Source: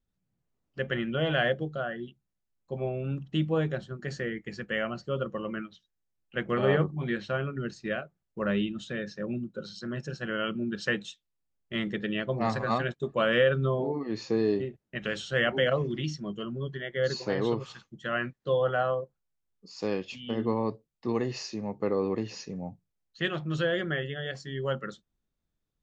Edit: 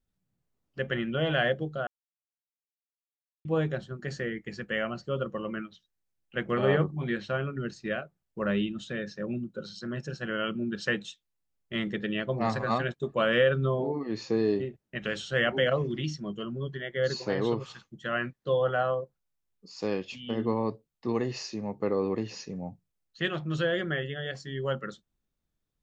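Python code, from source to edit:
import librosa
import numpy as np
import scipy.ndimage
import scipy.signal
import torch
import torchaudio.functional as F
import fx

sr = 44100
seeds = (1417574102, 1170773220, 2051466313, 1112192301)

y = fx.edit(x, sr, fx.silence(start_s=1.87, length_s=1.58), tone=tone)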